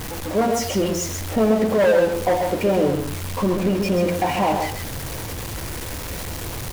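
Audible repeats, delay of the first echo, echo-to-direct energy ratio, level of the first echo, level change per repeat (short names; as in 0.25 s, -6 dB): 1, 0.133 s, -6.0 dB, -6.0 dB, no steady repeat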